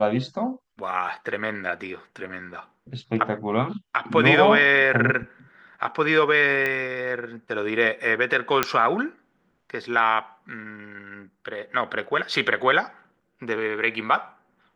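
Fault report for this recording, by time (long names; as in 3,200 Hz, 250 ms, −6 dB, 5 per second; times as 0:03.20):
0:06.66: click −13 dBFS
0:08.63: click −4 dBFS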